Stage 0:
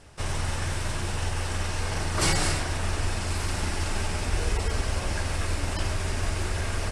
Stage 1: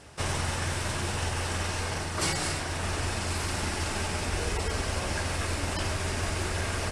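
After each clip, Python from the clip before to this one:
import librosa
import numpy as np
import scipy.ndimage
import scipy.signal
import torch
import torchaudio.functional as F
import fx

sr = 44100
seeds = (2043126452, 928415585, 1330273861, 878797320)

y = fx.highpass(x, sr, hz=94.0, slope=6)
y = fx.rider(y, sr, range_db=4, speed_s=0.5)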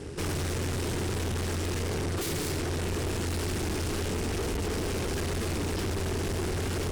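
y = 10.0 ** (-29.0 / 20.0) * (np.abs((x / 10.0 ** (-29.0 / 20.0) + 3.0) % 4.0 - 2.0) - 1.0)
y = fx.low_shelf_res(y, sr, hz=540.0, db=8.5, q=3.0)
y = fx.tube_stage(y, sr, drive_db=34.0, bias=0.5)
y = y * 10.0 ** (5.5 / 20.0)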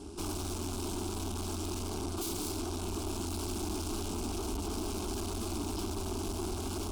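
y = fx.fixed_phaser(x, sr, hz=500.0, stages=6)
y = y * 10.0 ** (-2.0 / 20.0)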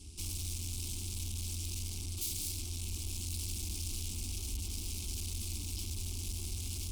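y = fx.curve_eq(x, sr, hz=(110.0, 470.0, 1500.0, 2200.0, 12000.0), db=(0, -23, -22, -2, 3))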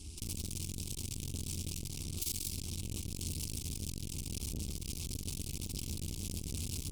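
y = fx.transformer_sat(x, sr, knee_hz=380.0)
y = y * 10.0 ** (3.5 / 20.0)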